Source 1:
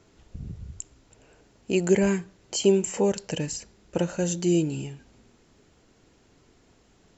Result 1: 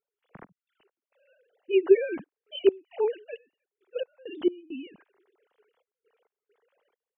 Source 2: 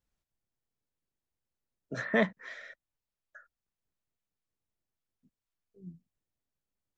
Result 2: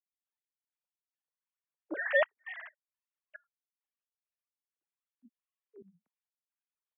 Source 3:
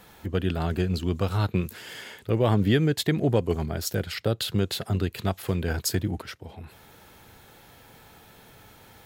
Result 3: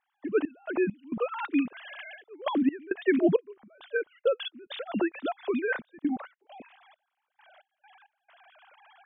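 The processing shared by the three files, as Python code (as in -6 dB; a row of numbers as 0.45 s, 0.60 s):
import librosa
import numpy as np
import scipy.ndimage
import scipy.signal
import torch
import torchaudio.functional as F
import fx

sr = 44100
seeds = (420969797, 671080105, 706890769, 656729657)

y = fx.sine_speech(x, sr)
y = fx.step_gate(y, sr, bpm=67, pattern='.x.x.xxxxx.x.xx.', floor_db=-24.0, edge_ms=4.5)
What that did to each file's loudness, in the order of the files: -1.0 LU, 0.0 LU, -3.5 LU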